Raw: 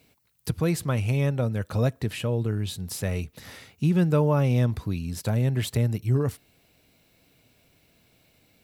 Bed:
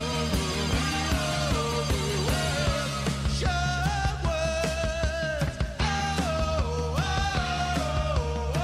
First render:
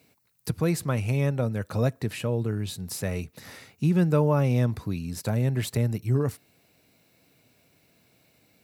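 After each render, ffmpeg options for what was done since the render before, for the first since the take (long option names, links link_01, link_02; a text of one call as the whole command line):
ffmpeg -i in.wav -af "highpass=97,equalizer=frequency=3200:width_type=o:width=0.37:gain=-5" out.wav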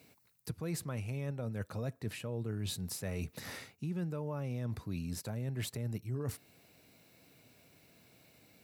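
ffmpeg -i in.wav -af "alimiter=limit=-17.5dB:level=0:latency=1:release=264,areverse,acompressor=threshold=-35dB:ratio=6,areverse" out.wav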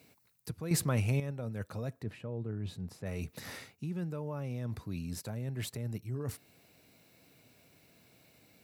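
ffmpeg -i in.wav -filter_complex "[0:a]asplit=3[link_01][link_02][link_03];[link_01]afade=type=out:start_time=2.02:duration=0.02[link_04];[link_02]lowpass=frequency=1200:poles=1,afade=type=in:start_time=2.02:duration=0.02,afade=type=out:start_time=3.05:duration=0.02[link_05];[link_03]afade=type=in:start_time=3.05:duration=0.02[link_06];[link_04][link_05][link_06]amix=inputs=3:normalize=0,asplit=3[link_07][link_08][link_09];[link_07]atrim=end=0.712[link_10];[link_08]atrim=start=0.708:end=1.202,asetpts=PTS-STARTPTS,volume=9dB[link_11];[link_09]atrim=start=1.198[link_12];[link_10][link_11]acrossfade=duration=0.004:curve1=hsin:curve2=hsin[link_13];[link_13][link_12]acrossfade=duration=0.004:curve1=hsin:curve2=hsin" out.wav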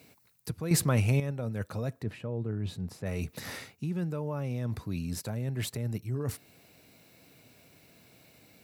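ffmpeg -i in.wav -af "volume=4.5dB" out.wav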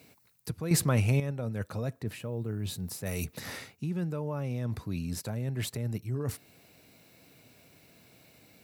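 ffmpeg -i in.wav -filter_complex "[0:a]asplit=3[link_01][link_02][link_03];[link_01]afade=type=out:start_time=2.05:duration=0.02[link_04];[link_02]aemphasis=mode=production:type=75fm,afade=type=in:start_time=2.05:duration=0.02,afade=type=out:start_time=3.24:duration=0.02[link_05];[link_03]afade=type=in:start_time=3.24:duration=0.02[link_06];[link_04][link_05][link_06]amix=inputs=3:normalize=0" out.wav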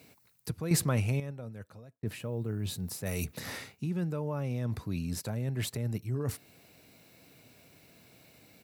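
ffmpeg -i in.wav -filter_complex "[0:a]asplit=3[link_01][link_02][link_03];[link_01]afade=type=out:start_time=3.28:duration=0.02[link_04];[link_02]asplit=2[link_05][link_06];[link_06]adelay=30,volume=-12dB[link_07];[link_05][link_07]amix=inputs=2:normalize=0,afade=type=in:start_time=3.28:duration=0.02,afade=type=out:start_time=3.86:duration=0.02[link_08];[link_03]afade=type=in:start_time=3.86:duration=0.02[link_09];[link_04][link_08][link_09]amix=inputs=3:normalize=0,asplit=2[link_10][link_11];[link_10]atrim=end=2.03,asetpts=PTS-STARTPTS,afade=type=out:start_time=0.54:duration=1.49[link_12];[link_11]atrim=start=2.03,asetpts=PTS-STARTPTS,afade=type=in:duration=0.004:curve=hsin[link_13];[link_12][link_13]concat=n=2:v=0:a=1" out.wav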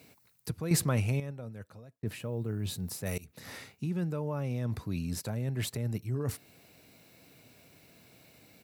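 ffmpeg -i in.wav -filter_complex "[0:a]asplit=2[link_01][link_02];[link_01]atrim=end=3.18,asetpts=PTS-STARTPTS,afade=type=out:start_time=3.176:duration=0.004:curve=hsin:silence=0.0707946[link_03];[link_02]atrim=start=3.18,asetpts=PTS-STARTPTS,afade=type=in:duration=0.65:silence=0.0707946[link_04];[link_03][link_04]concat=n=2:v=0:a=1" out.wav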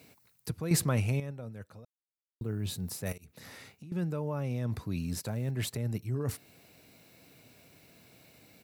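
ffmpeg -i in.wav -filter_complex "[0:a]asettb=1/sr,asplit=3[link_01][link_02][link_03];[link_01]atrim=end=3.124[link_04];[link_02]atrim=start=3.12:end=3.92,asetpts=PTS-STARTPTS,afade=type=in:duration=0.004:curve=qsin,afade=type=out:start_time=0.796:duration=0.004:curve=qsin,acompressor=threshold=-45dB:ratio=6:attack=3.2:release=140:knee=1:detection=peak[link_05];[link_03]atrim=start=3.916[link_06];[link_04][link_05]acrossfade=duration=0.004:curve1=hsin:curve2=qsin[link_07];[link_07][link_06]acrossfade=duration=0.004:curve1=qsin:curve2=hsin,asettb=1/sr,asplit=3[link_08][link_09][link_10];[link_08]atrim=end=4.994[link_11];[link_09]atrim=start=4.99:end=5.51,asetpts=PTS-STARTPTS,afade=type=in:duration=0.004:curve=qsin,afade=type=out:start_time=0.516:duration=0.004:curve=qsin,acrusher=bits=9:mode=log:mix=0:aa=0.000001[link_12];[link_10]atrim=start=5.506[link_13];[link_11][link_12]acrossfade=duration=0.004:curve1=hsin:curve2=qsin[link_14];[link_14][link_13]acrossfade=duration=0.004:curve1=qsin:curve2=hsin,asplit=3[link_15][link_16][link_17];[link_15]atrim=end=1.85,asetpts=PTS-STARTPTS,afade=type=out:start_time=1.846:duration=0.004:curve=hsin[link_18];[link_16]atrim=start=1.85:end=2.41,asetpts=PTS-STARTPTS,volume=0[link_19];[link_17]atrim=start=2.41,asetpts=PTS-STARTPTS,afade=type=in:duration=0.004:curve=hsin[link_20];[link_18][link_19][link_20]concat=n=3:v=0:a=1" out.wav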